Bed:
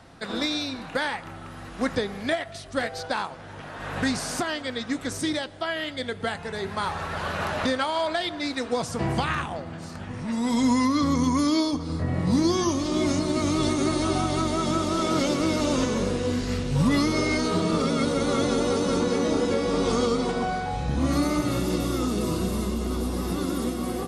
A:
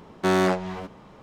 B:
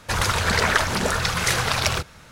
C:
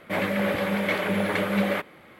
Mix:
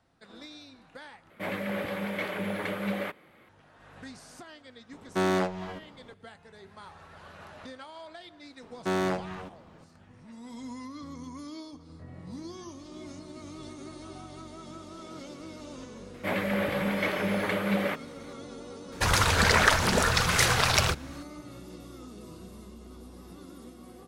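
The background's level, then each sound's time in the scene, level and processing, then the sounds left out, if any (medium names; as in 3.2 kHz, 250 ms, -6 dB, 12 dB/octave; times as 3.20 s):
bed -19.5 dB
1.30 s: replace with C -7.5 dB
4.92 s: add A -5 dB
8.62 s: add A -7 dB
16.14 s: add C -3.5 dB
18.92 s: add B -1.5 dB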